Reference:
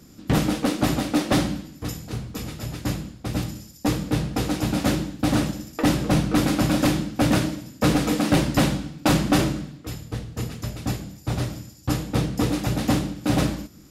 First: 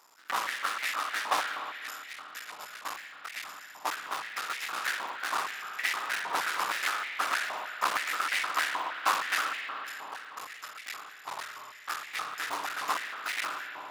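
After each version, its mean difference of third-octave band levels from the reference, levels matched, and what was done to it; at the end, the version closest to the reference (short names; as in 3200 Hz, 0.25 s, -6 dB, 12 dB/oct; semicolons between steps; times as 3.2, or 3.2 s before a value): 13.5 dB: cycle switcher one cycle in 3, muted; spring tank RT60 3.3 s, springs 58 ms, chirp 50 ms, DRR 3 dB; stepped high-pass 6.4 Hz 980–2000 Hz; gain -6 dB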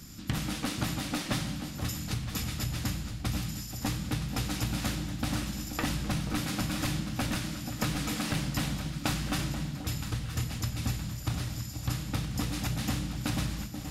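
7.0 dB: bell 440 Hz -13.5 dB 2 oct; compressor 6:1, threshold -35 dBFS, peak gain reduction 15 dB; echo with dull and thin repeats by turns 0.484 s, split 890 Hz, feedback 70%, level -8 dB; gain +5.5 dB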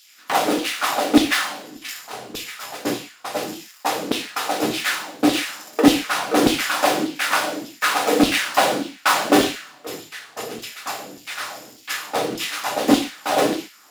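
9.5 dB: switching dead time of 0.062 ms; LFO high-pass saw down 1.7 Hz 300–3500 Hz; non-linear reverb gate 0.17 s falling, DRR 4.5 dB; gain +4 dB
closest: second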